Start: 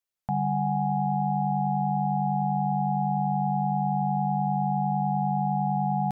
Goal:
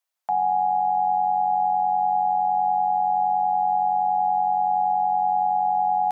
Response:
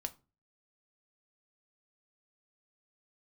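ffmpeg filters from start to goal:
-af "acontrast=21,alimiter=limit=-15.5dB:level=0:latency=1:release=23,highpass=f=740:t=q:w=1.6"

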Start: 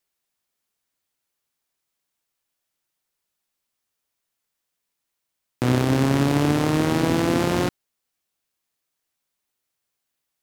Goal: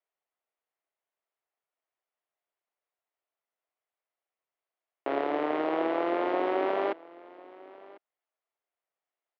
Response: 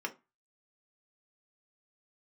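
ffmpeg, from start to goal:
-filter_complex "[0:a]asetrate=48951,aresample=44100,highpass=f=370:w=0.5412,highpass=f=370:w=1.3066,equalizer=f=670:t=q:w=4:g=6,equalizer=f=1.6k:t=q:w=4:g=-4,equalizer=f=2.5k:t=q:w=4:g=-4,lowpass=f=2.6k:w=0.5412,lowpass=f=2.6k:w=1.3066,asplit=2[a][b];[b]aecho=0:1:1047:0.0841[c];[a][c]amix=inputs=2:normalize=0,volume=-4.5dB"

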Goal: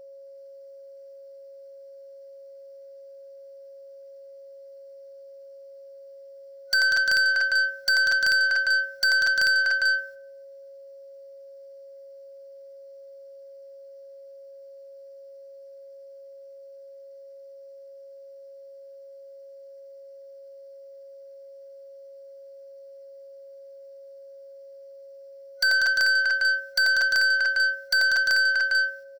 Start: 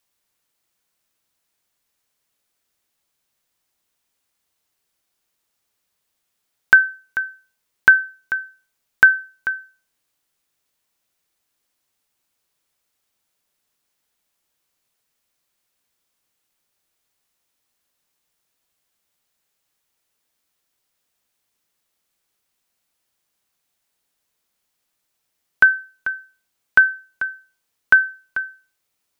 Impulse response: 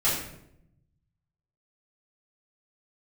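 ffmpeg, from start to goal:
-filter_complex "[0:a]agate=range=-15dB:threshold=-49dB:ratio=16:detection=peak,equalizer=f=220:w=2.7:g=-12,asplit=2[a][b];[1:a]atrim=start_sample=2205,lowpass=2.6k[c];[b][c]afir=irnorm=-1:irlink=0,volume=-34.5dB[d];[a][d]amix=inputs=2:normalize=0,acrossover=split=340|3000[e][f][g];[f]acompressor=threshold=-22dB:ratio=6[h];[e][h][g]amix=inputs=3:normalize=0,aecho=1:1:89|192|236|243|348|385:0.335|0.355|0.141|0.355|0.335|0.531,aeval=exprs='(mod(5.31*val(0)+1,2)-1)/5.31':c=same,aeval=exprs='(tanh(63.1*val(0)+0.15)-tanh(0.15))/63.1':c=same,superequalizer=8b=3.55:11b=2.82:14b=3.55:16b=0.631,aeval=exprs='val(0)+0.00282*sin(2*PI*550*n/s)':c=same,bandreject=f=1.8k:w=5.6,volume=8.5dB"

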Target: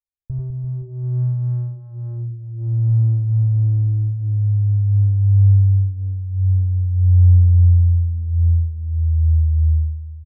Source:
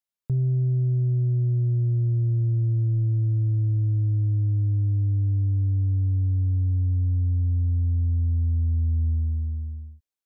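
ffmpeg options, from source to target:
-filter_complex "[0:a]firequalizer=gain_entry='entry(140,0);entry(210,-28);entry(380,-14);entry(550,-21)':delay=0.05:min_phase=1,aecho=1:1:90|202.5|343.1|518.9|738.6:0.631|0.398|0.251|0.158|0.1,asplit=2[a][b];[b]adynamicsmooth=sensitivity=1.5:basefreq=550,volume=2dB[c];[a][c]amix=inputs=2:normalize=0,equalizer=f=150:w=1.7:g=-15,bandreject=f=60:t=h:w=6,bandreject=f=120:t=h:w=6,bandreject=f=180:t=h:w=6,bandreject=f=240:t=h:w=6,bandreject=f=300:t=h:w=6,bandreject=f=360:t=h:w=6,volume=3.5dB"

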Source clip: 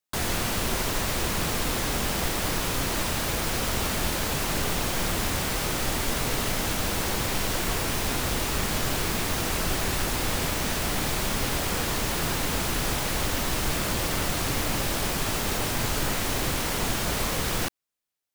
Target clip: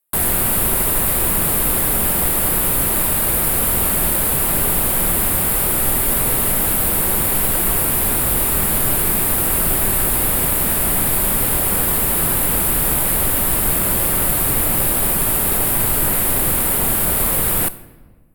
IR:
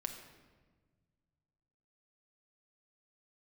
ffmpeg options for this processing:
-filter_complex "[0:a]aemphasis=mode=reproduction:type=75fm,aexciter=amount=10.4:drive=9.8:freq=9k,asplit=2[a][b];[1:a]atrim=start_sample=2205,highshelf=f=6.6k:g=9[c];[b][c]afir=irnorm=-1:irlink=0,volume=-6.5dB[d];[a][d]amix=inputs=2:normalize=0,volume=2dB"

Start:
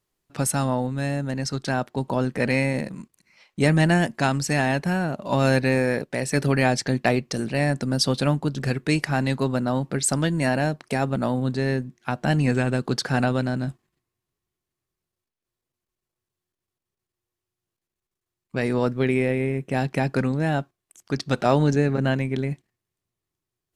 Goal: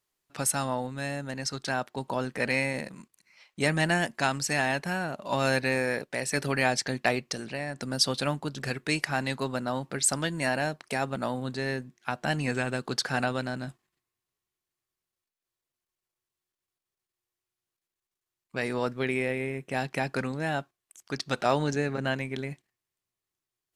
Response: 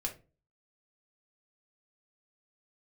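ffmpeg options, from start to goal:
-filter_complex "[0:a]asettb=1/sr,asplit=3[a][b][c];[a]atrim=end=7.344[d];[b]atrim=start=7.34:end=7.79,asetpts=PTS-STARTPTS,afade=t=in:d=0.004:c=qsin,afade=t=out:st=0.446:d=0.004:c=qsin,acrossover=split=2000|7200[e][f][g];[e]acompressor=threshold=-25dB:ratio=4[h];[f]acompressor=threshold=-42dB:ratio=4[i];[g]acompressor=threshold=-59dB:ratio=4[j];[h][i][j]amix=inputs=3:normalize=0[k];[c]atrim=start=7.786[l];[d][k]acrossfade=d=0.004:c1=hsin:c2=qsin[m];[m][l]acrossfade=d=0.004:c1=qsin:c2=hsin,lowshelf=f=480:g=-10.5,volume=-1dB"

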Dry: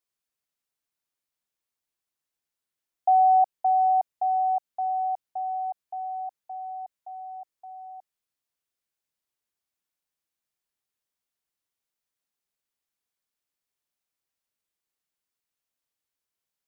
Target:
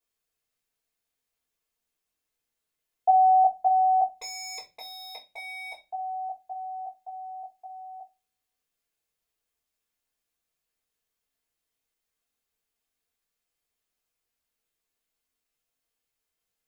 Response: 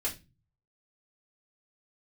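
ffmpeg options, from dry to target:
-filter_complex "[0:a]asettb=1/sr,asplit=3[a][b][c];[a]atrim=end=4.154[d];[b]atrim=start=4.15:end=5.86,asetpts=PTS-STARTPTS,afade=t=in:d=0.004:c=qsin,afade=t=out:st=1.706:d=0.004:c=qsin,aeval=exprs='0.0168*(abs(mod(val(0)/0.0168+3,4)-2)-1)':c=same[e];[c]atrim=start=5.856[f];[d][e]acrossfade=d=0.004:c1=hsin:c2=qsin[g];[g][f]acrossfade=d=0.004:c1=qsin:c2=hsin[h];[1:a]atrim=start_sample=2205[i];[h][i]afir=irnorm=-1:irlink=0"

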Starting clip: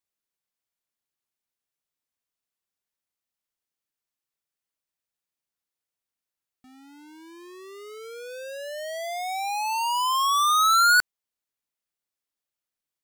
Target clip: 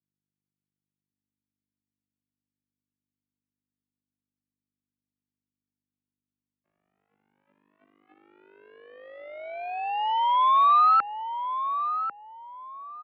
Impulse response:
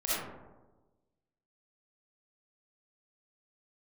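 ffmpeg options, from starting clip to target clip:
-filter_complex "[0:a]bandreject=f=50:t=h:w=6,bandreject=f=100:t=h:w=6,bandreject=f=150:t=h:w=6,bandreject=f=200:t=h:w=6,bandreject=f=250:t=h:w=6,bandreject=f=300:t=h:w=6,bandreject=f=350:t=h:w=6,bandreject=f=400:t=h:w=6,bandreject=f=450:t=h:w=6,aeval=exprs='val(0)+0.00447*(sin(2*PI*50*n/s)+sin(2*PI*2*50*n/s)/2+sin(2*PI*3*50*n/s)/3+sin(2*PI*4*50*n/s)/4+sin(2*PI*5*50*n/s)/5)':c=same,aeval=exprs='0.178*(cos(1*acos(clip(val(0)/0.178,-1,1)))-cos(1*PI/2))+0.0282*(cos(4*acos(clip(val(0)/0.178,-1,1)))-cos(4*PI/2))+0.0251*(cos(7*acos(clip(val(0)/0.178,-1,1)))-cos(7*PI/2))':c=same,asplit=2[a][b];[b]adelay=1095,lowpass=f=1k:p=1,volume=-5dB,asplit=2[c][d];[d]adelay=1095,lowpass=f=1k:p=1,volume=0.36,asplit=2[e][f];[f]adelay=1095,lowpass=f=1k:p=1,volume=0.36,asplit=2[g][h];[h]adelay=1095,lowpass=f=1k:p=1,volume=0.36[i];[a][c][e][g][i]amix=inputs=5:normalize=0,highpass=f=390:t=q:w=0.5412,highpass=f=390:t=q:w=1.307,lowpass=f=2.9k:t=q:w=0.5176,lowpass=f=2.9k:t=q:w=0.7071,lowpass=f=2.9k:t=q:w=1.932,afreqshift=-150"

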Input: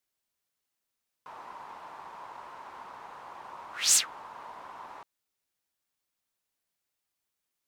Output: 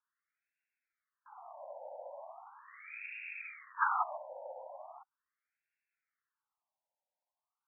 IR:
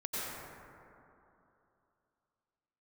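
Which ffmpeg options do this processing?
-af "aeval=exprs='val(0)*sin(2*PI*1500*n/s)':c=same,agate=range=-8dB:threshold=-44dB:ratio=16:detection=peak,afftfilt=real='re*between(b*sr/1024,690*pow(2000/690,0.5+0.5*sin(2*PI*0.39*pts/sr))/1.41,690*pow(2000/690,0.5+0.5*sin(2*PI*0.39*pts/sr))*1.41)':imag='im*between(b*sr/1024,690*pow(2000/690,0.5+0.5*sin(2*PI*0.39*pts/sr))/1.41,690*pow(2000/690,0.5+0.5*sin(2*PI*0.39*pts/sr))*1.41)':win_size=1024:overlap=0.75,volume=15dB"

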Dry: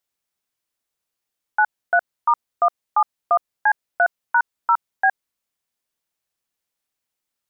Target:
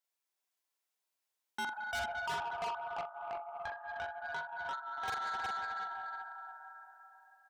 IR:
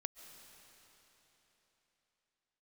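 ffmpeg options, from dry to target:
-filter_complex "[1:a]atrim=start_sample=2205[a];[0:a][a]afir=irnorm=-1:irlink=0,asettb=1/sr,asplit=3[b][c][d];[b]atrim=end=2.644[e];[c]atrim=start=2.64:end=5.08,asetpts=PTS-STARTPTS,afade=t=in:d=0.004:c=qsin,afade=t=out:st=2.436:d=0.004:c=qsin,acompressor=threshold=-32dB:ratio=16[f];[d]atrim=start=5.076[g];[e][f]acrossfade=d=0.004:c1=hsin:c2=qsin[h];[h][g]acrossfade=d=0.004:c1=qsin:c2=hsin,highpass=390,equalizer=f=990:t=o:w=0.44:g=2.5,bandreject=f=1.2k:w=17,asplit=2[i][j];[j]adelay=45,volume=-6.5dB[k];[i][k]amix=inputs=2:normalize=0,aecho=1:1:42|364:0.299|0.596,asoftclip=type=tanh:threshold=-30.5dB,volume=-4dB"

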